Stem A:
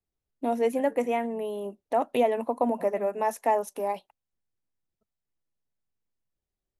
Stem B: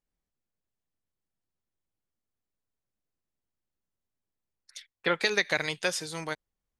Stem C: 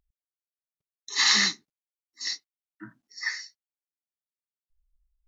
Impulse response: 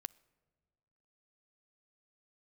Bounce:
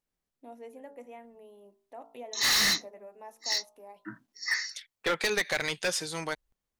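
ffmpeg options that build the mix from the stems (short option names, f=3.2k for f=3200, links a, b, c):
-filter_complex "[0:a]bandreject=f=56.27:t=h:w=4,bandreject=f=112.54:t=h:w=4,bandreject=f=168.81:t=h:w=4,bandreject=f=225.08:t=h:w=4,bandreject=f=281.35:t=h:w=4,bandreject=f=337.62:t=h:w=4,bandreject=f=393.89:t=h:w=4,bandreject=f=450.16:t=h:w=4,bandreject=f=506.43:t=h:w=4,bandreject=f=562.7:t=h:w=4,bandreject=f=618.97:t=h:w=4,bandreject=f=675.24:t=h:w=4,bandreject=f=731.51:t=h:w=4,bandreject=f=787.78:t=h:w=4,bandreject=f=844.05:t=h:w=4,bandreject=f=900.32:t=h:w=4,bandreject=f=956.59:t=h:w=4,bandreject=f=1.01286k:t=h:w=4,bandreject=f=1.06913k:t=h:w=4,bandreject=f=1.1254k:t=h:w=4,bandreject=f=1.18167k:t=h:w=4,bandreject=f=1.23794k:t=h:w=4,bandreject=f=1.29421k:t=h:w=4,bandreject=f=1.35048k:t=h:w=4,bandreject=f=1.40675k:t=h:w=4,volume=-19.5dB[a];[1:a]volume=2dB[b];[2:a]adelay=1250,volume=2.5dB[c];[a][b][c]amix=inputs=3:normalize=0,lowshelf=f=120:g=-6.5,asoftclip=type=hard:threshold=-22dB"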